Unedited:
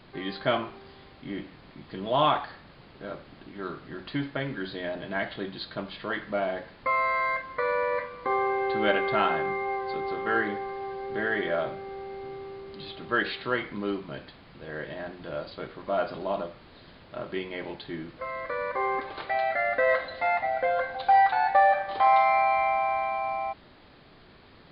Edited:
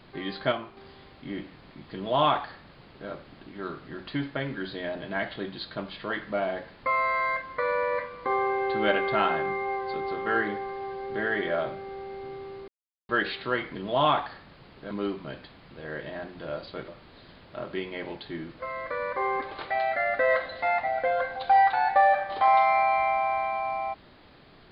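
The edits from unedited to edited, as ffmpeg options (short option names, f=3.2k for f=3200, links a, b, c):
-filter_complex "[0:a]asplit=8[a][b][c][d][e][f][g][h];[a]atrim=end=0.522[i];[b]atrim=start=0.518:end=0.772,asetpts=PTS-STARTPTS,volume=-6dB[j];[c]atrim=start=0.768:end=12.68,asetpts=PTS-STARTPTS,afade=t=out:st=11.908:d=0.004:c=hsin[k];[d]atrim=start=12.68:end=13.09,asetpts=PTS-STARTPTS,volume=0[l];[e]atrim=start=13.09:end=13.752,asetpts=PTS-STARTPTS,afade=t=in:d=0.004:c=hsin[m];[f]atrim=start=1.928:end=3.092[n];[g]atrim=start=13.748:end=15.722[o];[h]atrim=start=16.468[p];[i][j]acrossfade=d=0.004:c1=hsin:c2=hsin[q];[k][l][m]concat=n=3:v=0:a=1[r];[q][r]acrossfade=d=0.004:c1=hsin:c2=hsin[s];[s][n]acrossfade=d=0.004:c1=hsin:c2=hsin[t];[t][o]acrossfade=d=0.004:c1=hsin:c2=hsin[u];[u][p]acrossfade=d=0.004:c1=hsin:c2=hsin"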